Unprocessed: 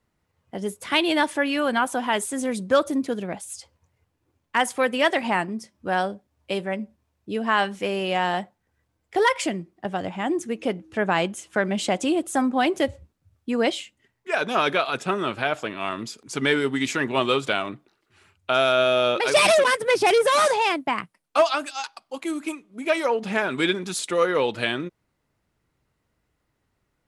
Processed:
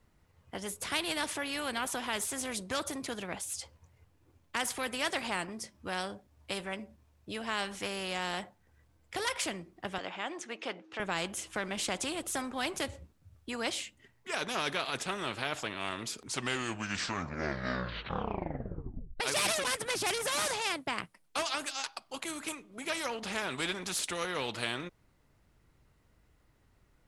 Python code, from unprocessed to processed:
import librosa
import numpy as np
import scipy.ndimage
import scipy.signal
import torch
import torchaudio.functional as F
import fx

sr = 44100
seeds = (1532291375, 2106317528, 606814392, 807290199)

y = fx.bandpass_edges(x, sr, low_hz=450.0, high_hz=4700.0, at=(9.98, 11.0))
y = fx.edit(y, sr, fx.tape_stop(start_s=16.17, length_s=3.03), tone=tone)
y = fx.low_shelf(y, sr, hz=63.0, db=11.0)
y = fx.spectral_comp(y, sr, ratio=2.0)
y = F.gain(torch.from_numpy(y), -8.5).numpy()